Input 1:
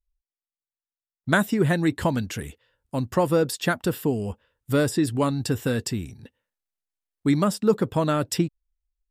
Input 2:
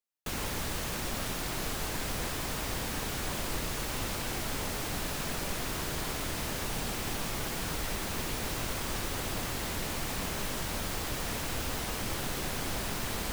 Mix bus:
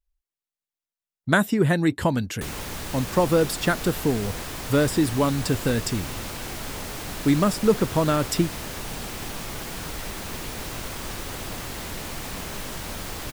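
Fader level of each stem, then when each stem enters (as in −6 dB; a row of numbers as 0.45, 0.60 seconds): +1.0, +1.0 decibels; 0.00, 2.15 seconds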